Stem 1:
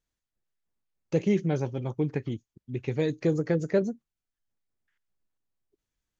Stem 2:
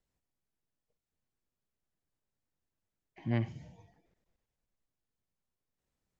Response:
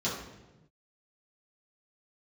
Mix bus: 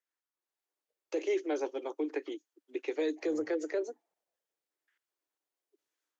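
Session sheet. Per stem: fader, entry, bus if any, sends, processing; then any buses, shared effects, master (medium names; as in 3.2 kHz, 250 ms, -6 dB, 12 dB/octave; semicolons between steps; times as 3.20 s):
-10.0 dB, 0.00 s, no send, level rider gain up to 10.5 dB; steep high-pass 290 Hz 96 dB/octave
+1.5 dB, 0.00 s, no send, bass shelf 280 Hz -10 dB; peak limiter -32 dBFS, peak gain reduction 10 dB; LFO band-pass saw down 0.85 Hz 380–1800 Hz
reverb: none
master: peak limiter -23.5 dBFS, peak gain reduction 9 dB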